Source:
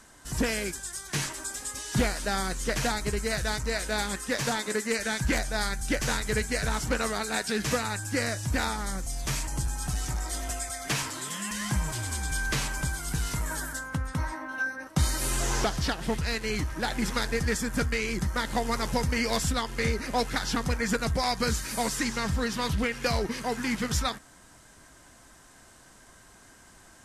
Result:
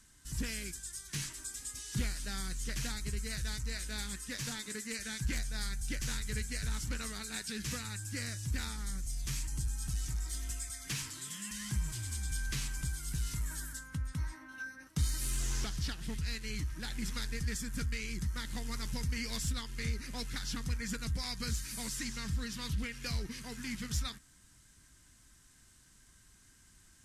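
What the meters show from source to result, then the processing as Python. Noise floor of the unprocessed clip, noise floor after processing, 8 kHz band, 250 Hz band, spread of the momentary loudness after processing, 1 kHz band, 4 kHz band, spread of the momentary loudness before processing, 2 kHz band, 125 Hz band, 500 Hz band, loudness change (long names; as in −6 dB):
−54 dBFS, −62 dBFS, −7.0 dB, −11.0 dB, 4 LU, −18.5 dB, −8.0 dB, 5 LU, −12.0 dB, −6.0 dB, −19.5 dB, −9.0 dB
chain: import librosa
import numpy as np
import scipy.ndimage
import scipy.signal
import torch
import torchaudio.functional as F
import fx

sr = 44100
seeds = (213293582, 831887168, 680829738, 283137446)

p1 = fx.tone_stack(x, sr, knobs='6-0-2')
p2 = 10.0 ** (-37.5 / 20.0) * np.tanh(p1 / 10.0 ** (-37.5 / 20.0))
p3 = p1 + F.gain(torch.from_numpy(p2), -4.0).numpy()
y = F.gain(torch.from_numpy(p3), 4.0).numpy()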